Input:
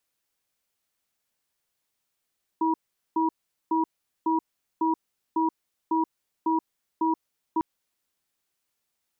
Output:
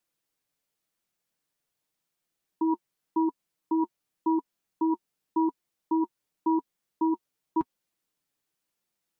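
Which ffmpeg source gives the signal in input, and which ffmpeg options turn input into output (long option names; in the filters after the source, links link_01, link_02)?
-f lavfi -i "aevalsrc='0.0668*(sin(2*PI*323*t)+sin(2*PI*962*t))*clip(min(mod(t,0.55),0.13-mod(t,0.55))/0.005,0,1)':duration=5:sample_rate=44100"
-af "equalizer=frequency=220:width_type=o:width=2.6:gain=5,flanger=delay=5.5:depth=1.6:regen=-35:speed=0.9:shape=triangular"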